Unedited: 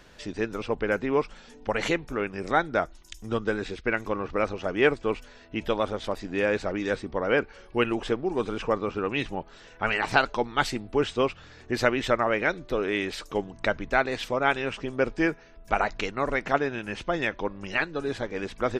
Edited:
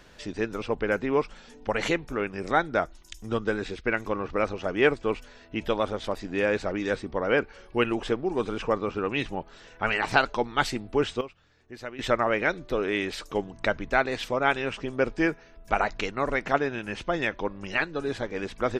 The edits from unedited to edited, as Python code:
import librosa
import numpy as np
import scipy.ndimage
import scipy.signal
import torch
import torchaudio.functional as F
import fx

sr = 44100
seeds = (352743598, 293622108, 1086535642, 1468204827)

y = fx.edit(x, sr, fx.fade_down_up(start_s=11.02, length_s=1.16, db=-15.0, fade_s=0.19, curve='log'), tone=tone)